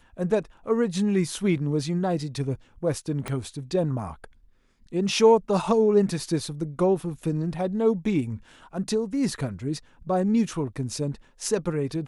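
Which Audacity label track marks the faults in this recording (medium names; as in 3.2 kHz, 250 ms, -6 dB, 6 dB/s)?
3.280000	3.280000	pop -17 dBFS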